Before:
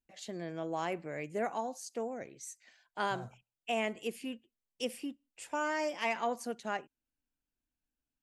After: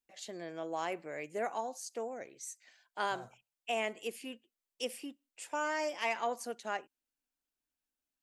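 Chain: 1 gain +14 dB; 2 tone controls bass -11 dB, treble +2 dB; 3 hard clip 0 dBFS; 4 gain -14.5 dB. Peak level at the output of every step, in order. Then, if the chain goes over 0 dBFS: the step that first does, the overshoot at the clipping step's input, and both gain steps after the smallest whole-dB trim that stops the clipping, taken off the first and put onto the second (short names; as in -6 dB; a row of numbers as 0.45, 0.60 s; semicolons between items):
-6.0, -6.0, -6.0, -20.5 dBFS; no overload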